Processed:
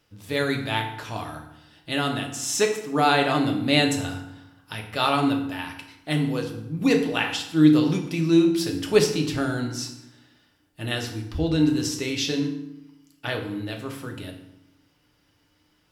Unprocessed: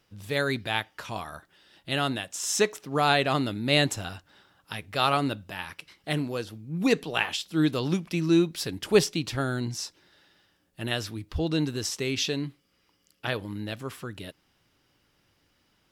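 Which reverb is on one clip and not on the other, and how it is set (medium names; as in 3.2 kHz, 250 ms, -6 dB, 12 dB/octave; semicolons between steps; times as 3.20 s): FDN reverb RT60 0.84 s, low-frequency decay 1.35×, high-frequency decay 0.75×, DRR 2 dB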